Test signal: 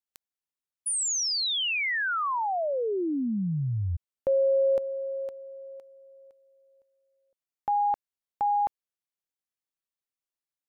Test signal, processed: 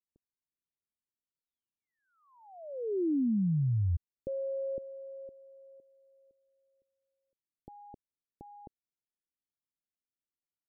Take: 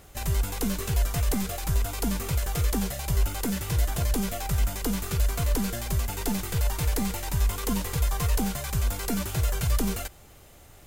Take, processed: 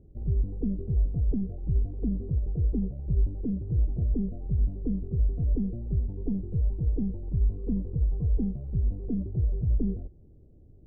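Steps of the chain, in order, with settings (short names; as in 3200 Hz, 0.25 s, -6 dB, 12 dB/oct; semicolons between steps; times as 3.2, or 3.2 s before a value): inverse Chebyshev low-pass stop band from 2300 Hz, stop band 80 dB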